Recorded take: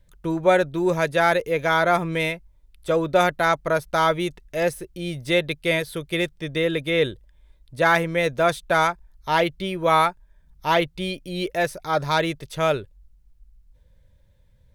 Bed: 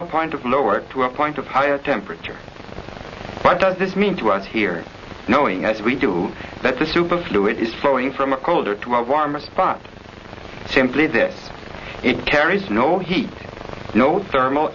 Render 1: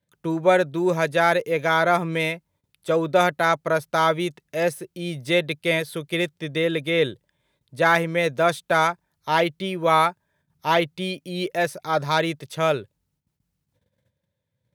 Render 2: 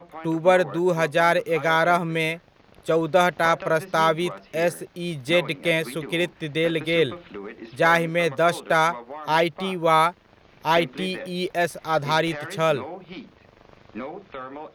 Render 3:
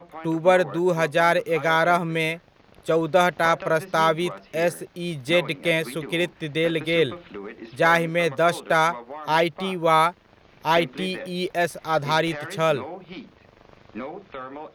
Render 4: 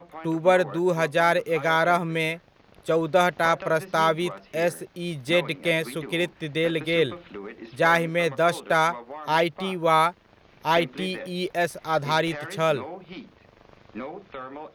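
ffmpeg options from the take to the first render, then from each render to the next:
ffmpeg -i in.wav -af "agate=range=-12dB:threshold=-53dB:ratio=16:detection=peak,highpass=frequency=110:width=0.5412,highpass=frequency=110:width=1.3066" out.wav
ffmpeg -i in.wav -i bed.wav -filter_complex "[1:a]volume=-19dB[link_01];[0:a][link_01]amix=inputs=2:normalize=0" out.wav
ffmpeg -i in.wav -af anull out.wav
ffmpeg -i in.wav -af "volume=-1.5dB" out.wav

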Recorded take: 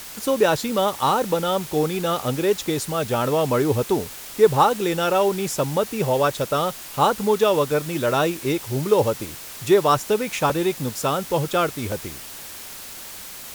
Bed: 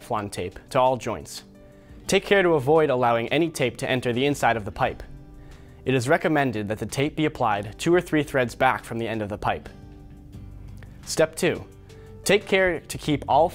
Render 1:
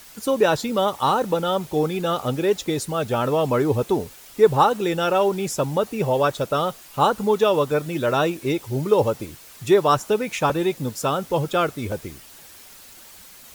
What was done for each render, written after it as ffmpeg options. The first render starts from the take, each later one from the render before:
ffmpeg -i in.wav -af "afftdn=noise_reduction=9:noise_floor=-37" out.wav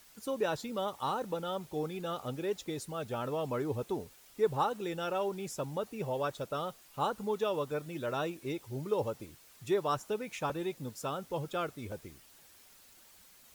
ffmpeg -i in.wav -af "volume=-14dB" out.wav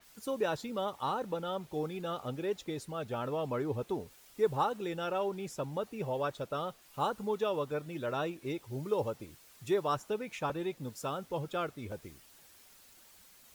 ffmpeg -i in.wav -af "adynamicequalizer=threshold=0.00158:dfrequency=4700:dqfactor=0.7:tfrequency=4700:tqfactor=0.7:attack=5:release=100:ratio=0.375:range=3:mode=cutabove:tftype=highshelf" out.wav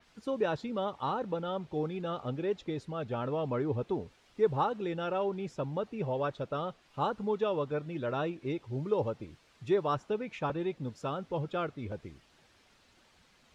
ffmpeg -i in.wav -af "lowpass=4100,equalizer=frequency=120:width=0.31:gain=4" out.wav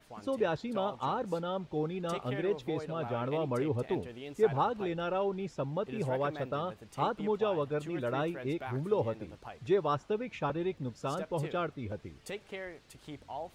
ffmpeg -i in.wav -i bed.wav -filter_complex "[1:a]volume=-22dB[link_01];[0:a][link_01]amix=inputs=2:normalize=0" out.wav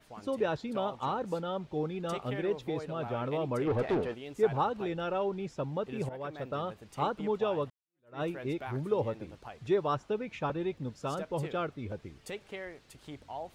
ffmpeg -i in.wav -filter_complex "[0:a]asplit=3[link_01][link_02][link_03];[link_01]afade=type=out:start_time=3.66:duration=0.02[link_04];[link_02]asplit=2[link_05][link_06];[link_06]highpass=frequency=720:poles=1,volume=24dB,asoftclip=type=tanh:threshold=-20.5dB[link_07];[link_05][link_07]amix=inputs=2:normalize=0,lowpass=frequency=1100:poles=1,volume=-6dB,afade=type=in:start_time=3.66:duration=0.02,afade=type=out:start_time=4.13:duration=0.02[link_08];[link_03]afade=type=in:start_time=4.13:duration=0.02[link_09];[link_04][link_08][link_09]amix=inputs=3:normalize=0,asplit=3[link_10][link_11][link_12];[link_10]atrim=end=6.09,asetpts=PTS-STARTPTS,afade=type=out:start_time=6.086:duration=0.004:curve=hsin:silence=0.223872[link_13];[link_11]atrim=start=6.09:end=7.7,asetpts=PTS-STARTPTS,afade=type=in:duration=0.51:silence=0.223872,afade=type=out:start_time=1.606:duration=0.004:curve=hsin[link_14];[link_12]atrim=start=7.7,asetpts=PTS-STARTPTS,afade=type=in:duration=0.52:curve=exp[link_15];[link_13][link_14][link_15]concat=n=3:v=0:a=1" out.wav

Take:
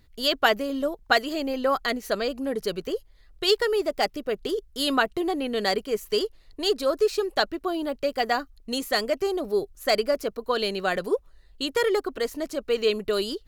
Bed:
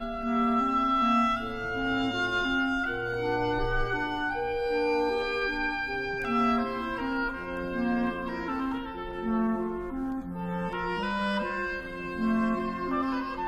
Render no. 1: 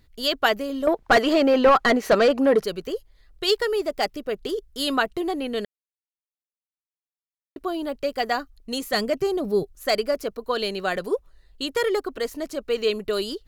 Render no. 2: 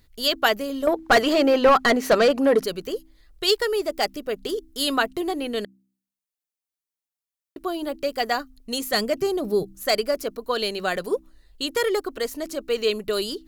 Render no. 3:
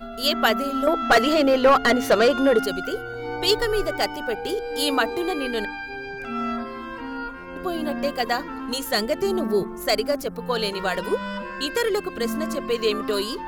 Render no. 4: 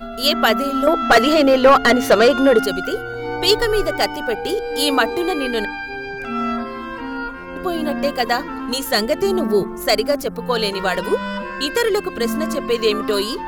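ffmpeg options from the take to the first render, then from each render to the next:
ffmpeg -i in.wav -filter_complex "[0:a]asettb=1/sr,asplit=3[link_01][link_02][link_03];[link_01]atrim=end=0.874[link_04];[link_02]atrim=start=0.87:end=2.64,asetpts=PTS-STARTPTS,afade=type=in:duration=0.004:curve=qsin,afade=type=out:start_time=1.766:duration=0.004:curve=qsin,asplit=2[link_05][link_06];[link_06]highpass=frequency=720:poles=1,volume=25dB,asoftclip=type=tanh:threshold=-5dB[link_07];[link_05][link_07]amix=inputs=2:normalize=0,lowpass=frequency=1200:poles=1,volume=-6dB[link_08];[link_03]atrim=start=2.636[link_09];[link_04][link_08]acrossfade=duration=0.004:curve1=hsin:curve2=qsin[link_10];[link_10][link_09]acrossfade=duration=0.004:curve1=qsin:curve2=hsin,asettb=1/sr,asplit=3[link_11][link_12][link_13];[link_11]atrim=end=8.934[link_14];[link_12]atrim=start=8.93:end=9.63,asetpts=PTS-STARTPTS,afade=type=in:duration=0.004:curve=qsin,afade=type=out:start_time=0.696:duration=0.004:curve=qsin,equalizer=frequency=150:width_type=o:width=1.2:gain=14[link_15];[link_13]atrim=start=9.626[link_16];[link_14][link_15]acrossfade=duration=0.004:curve1=hsin:curve2=qsin[link_17];[link_17][link_16]acrossfade=duration=0.004:curve1=qsin:curve2=hsin,asplit=3[link_18][link_19][link_20];[link_18]atrim=end=5.65,asetpts=PTS-STARTPTS,afade=type=out:start_time=5.646:duration=0.004:curve=hsin[link_21];[link_19]atrim=start=5.65:end=7.56,asetpts=PTS-STARTPTS,volume=0[link_22];[link_20]atrim=start=7.56,asetpts=PTS-STARTPTS,afade=type=in:duration=0.004:curve=hsin[link_23];[link_21][link_22][link_23]concat=n=3:v=0:a=1" out.wav
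ffmpeg -i in.wav -af "highshelf=frequency=5400:gain=6.5,bandreject=frequency=64.69:width_type=h:width=4,bandreject=frequency=129.38:width_type=h:width=4,bandreject=frequency=194.07:width_type=h:width=4,bandreject=frequency=258.76:width_type=h:width=4,bandreject=frequency=323.45:width_type=h:width=4" out.wav
ffmpeg -i in.wav -i bed.wav -filter_complex "[1:a]volume=-2dB[link_01];[0:a][link_01]amix=inputs=2:normalize=0" out.wav
ffmpeg -i in.wav -af "volume=5dB,alimiter=limit=-2dB:level=0:latency=1" out.wav

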